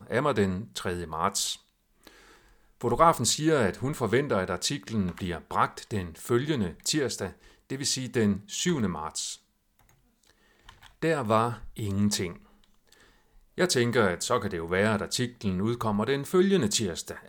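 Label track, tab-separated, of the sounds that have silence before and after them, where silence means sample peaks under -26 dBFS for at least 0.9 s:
2.840000	9.280000	sound
11.020000	12.270000	sound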